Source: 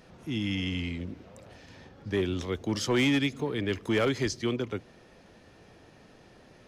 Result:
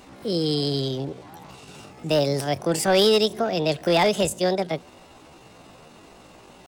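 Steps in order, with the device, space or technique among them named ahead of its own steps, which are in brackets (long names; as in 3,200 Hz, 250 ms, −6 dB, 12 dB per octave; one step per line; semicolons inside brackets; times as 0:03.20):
0:01.75–0:02.58: high-shelf EQ 5,900 Hz +10 dB
chipmunk voice (pitch shifter +7.5 semitones)
level +7 dB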